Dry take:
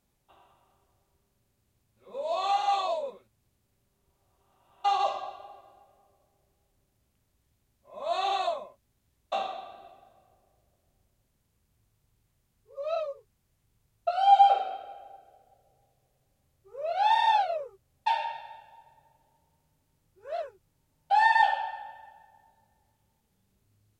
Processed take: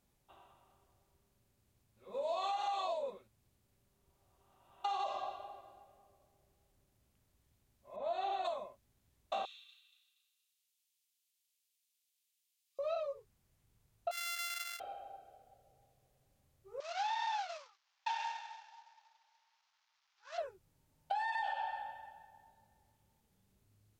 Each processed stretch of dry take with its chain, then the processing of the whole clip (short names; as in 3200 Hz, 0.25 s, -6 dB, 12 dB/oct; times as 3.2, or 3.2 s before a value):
7.96–8.45 LPF 1500 Hz 6 dB/oct + notch 1100 Hz, Q 5.3
9.45–12.79 inverse Chebyshev high-pass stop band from 600 Hz, stop band 70 dB + frequency-shifting echo 0.236 s, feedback 40%, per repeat +34 Hz, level -14 dB
14.11–14.8 sample sorter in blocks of 64 samples + HPF 1500 Hz 24 dB/oct
16.8–20.38 CVSD 32 kbps + steep high-pass 840 Hz
whole clip: limiter -20.5 dBFS; compressor 6:1, threshold -32 dBFS; gain -2 dB